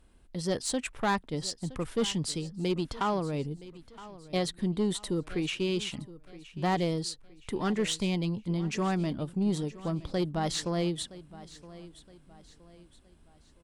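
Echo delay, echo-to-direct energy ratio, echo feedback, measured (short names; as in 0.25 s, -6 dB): 0.968 s, -17.5 dB, 39%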